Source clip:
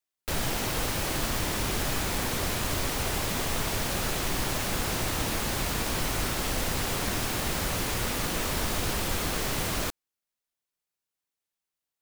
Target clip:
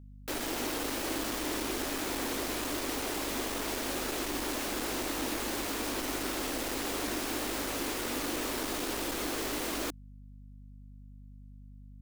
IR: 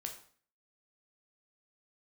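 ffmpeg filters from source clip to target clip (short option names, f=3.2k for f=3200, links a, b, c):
-af "asoftclip=type=tanh:threshold=-25.5dB,lowshelf=f=200:t=q:w=3:g=-12,aeval=exprs='val(0)+0.00501*(sin(2*PI*50*n/s)+sin(2*PI*2*50*n/s)/2+sin(2*PI*3*50*n/s)/3+sin(2*PI*4*50*n/s)/4+sin(2*PI*5*50*n/s)/5)':c=same,volume=-2.5dB"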